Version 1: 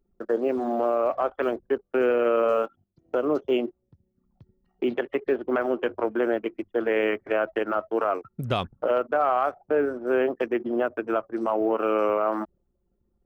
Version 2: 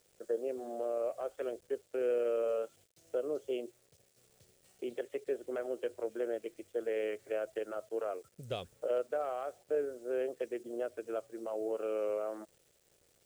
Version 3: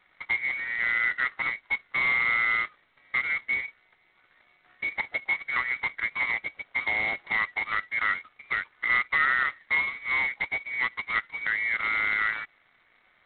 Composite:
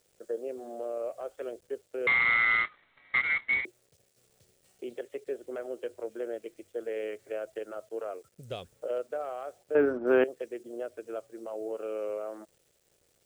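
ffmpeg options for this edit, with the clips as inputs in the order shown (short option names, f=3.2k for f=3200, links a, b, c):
-filter_complex "[1:a]asplit=3[a][b][c];[a]atrim=end=2.072[d];[2:a]atrim=start=2.068:end=3.652[e];[b]atrim=start=3.648:end=9.752[f];[0:a]atrim=start=9.748:end=10.242[g];[c]atrim=start=10.238[h];[d][e]acrossfade=d=0.004:c1=hsin:c2=hsin[i];[i][f]acrossfade=d=0.004:c1=hsin:c2=hsin[j];[j][g]acrossfade=d=0.004:c1=hsin:c2=hsin[k];[k][h]acrossfade=d=0.004:c1=hsin:c2=hsin"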